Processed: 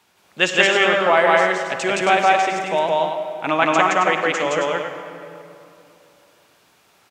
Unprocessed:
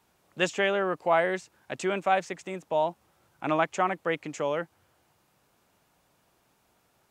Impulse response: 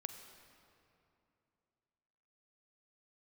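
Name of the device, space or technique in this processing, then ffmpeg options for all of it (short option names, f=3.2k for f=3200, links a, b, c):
stadium PA: -filter_complex "[0:a]highpass=f=150:p=1,equalizer=f=3.2k:t=o:w=2.5:g=7,aecho=1:1:169.1|271.1:1|0.501[a];[1:a]atrim=start_sample=2205[b];[a][b]afir=irnorm=-1:irlink=0,volume=7.5dB"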